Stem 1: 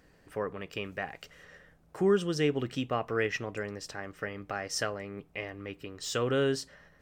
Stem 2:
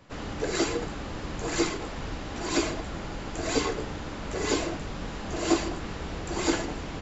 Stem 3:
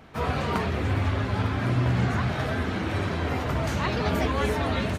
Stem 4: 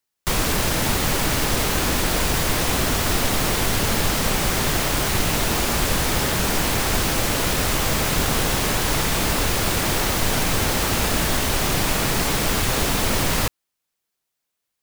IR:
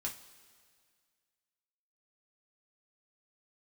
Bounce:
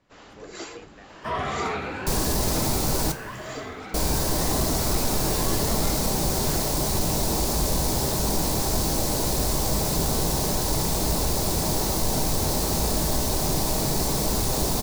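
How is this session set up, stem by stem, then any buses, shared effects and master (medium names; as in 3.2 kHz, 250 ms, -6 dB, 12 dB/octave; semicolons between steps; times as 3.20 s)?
-15.5 dB, 0.00 s, no send, none
-7.0 dB, 0.00 s, no send, bass shelf 220 Hz -8.5 dB; harmonic tremolo 2.2 Hz, depth 50%, crossover 420 Hz
1.75 s -9 dB -> 2.40 s -18.5 dB, 1.10 s, send -4 dB, drifting ripple filter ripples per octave 1.3, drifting +0.94 Hz, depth 10 dB; overdrive pedal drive 17 dB, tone 2.2 kHz, clips at -11.5 dBFS
-5.0 dB, 1.80 s, muted 3.12–3.94 s, send -3 dB, high-order bell 2 kHz -12 dB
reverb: on, pre-delay 3 ms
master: saturation -13.5 dBFS, distortion -22 dB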